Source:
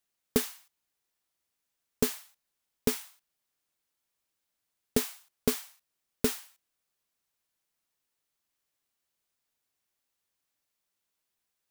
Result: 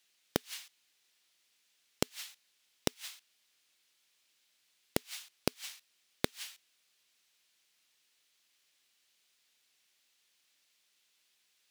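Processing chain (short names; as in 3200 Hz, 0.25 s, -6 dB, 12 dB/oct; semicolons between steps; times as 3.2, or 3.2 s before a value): flipped gate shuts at -18 dBFS, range -39 dB; weighting filter D; gain +4 dB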